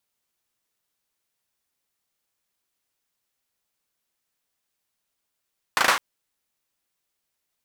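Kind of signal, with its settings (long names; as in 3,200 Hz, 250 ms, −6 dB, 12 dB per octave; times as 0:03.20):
synth clap length 0.21 s, apart 37 ms, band 1,200 Hz, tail 0.41 s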